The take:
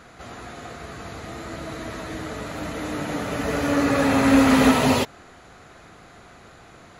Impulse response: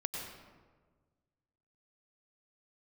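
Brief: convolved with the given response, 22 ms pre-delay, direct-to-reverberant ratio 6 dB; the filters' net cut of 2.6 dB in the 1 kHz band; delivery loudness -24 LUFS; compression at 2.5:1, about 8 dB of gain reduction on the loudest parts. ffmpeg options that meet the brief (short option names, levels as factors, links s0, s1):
-filter_complex "[0:a]equalizer=f=1000:t=o:g=-3.5,acompressor=threshold=0.0631:ratio=2.5,asplit=2[s0][s1];[1:a]atrim=start_sample=2205,adelay=22[s2];[s1][s2]afir=irnorm=-1:irlink=0,volume=0.398[s3];[s0][s3]amix=inputs=2:normalize=0,volume=1.41"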